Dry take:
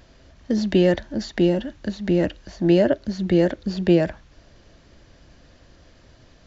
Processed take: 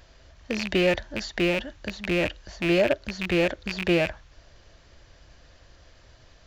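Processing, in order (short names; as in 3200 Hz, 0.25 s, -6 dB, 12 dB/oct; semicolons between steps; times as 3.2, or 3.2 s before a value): rattling part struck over -29 dBFS, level -17 dBFS; bell 230 Hz -10 dB 1.6 oct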